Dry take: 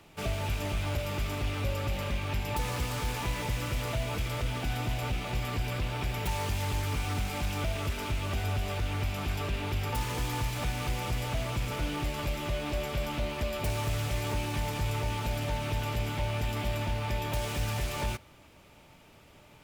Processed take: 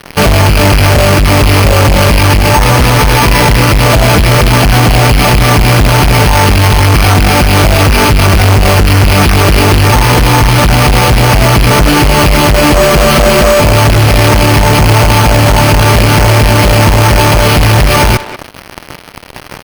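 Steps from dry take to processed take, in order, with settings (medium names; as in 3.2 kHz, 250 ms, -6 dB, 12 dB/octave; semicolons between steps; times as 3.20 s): 12.75–13.60 s: comb 5.2 ms, depth 92%; fuzz box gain 42 dB, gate -51 dBFS; careless resampling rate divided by 6×, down filtered, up hold; speakerphone echo 190 ms, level -15 dB; loudness maximiser +15.5 dB; trim -1 dB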